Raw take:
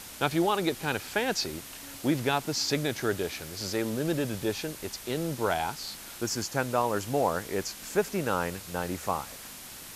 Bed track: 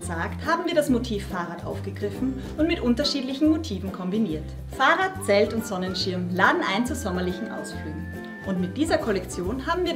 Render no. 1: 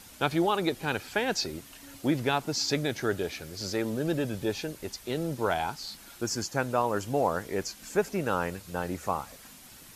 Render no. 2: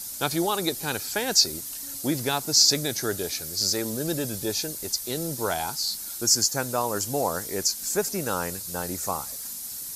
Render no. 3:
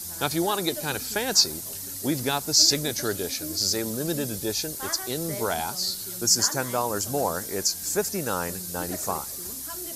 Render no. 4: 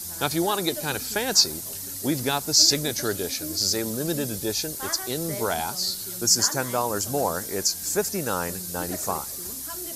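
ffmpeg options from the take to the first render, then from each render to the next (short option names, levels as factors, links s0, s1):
-af "afftdn=nr=8:nf=-44"
-af "aexciter=amount=5.5:drive=4.6:freq=4100"
-filter_complex "[1:a]volume=0.133[s0];[0:a][s0]amix=inputs=2:normalize=0"
-af "volume=1.12"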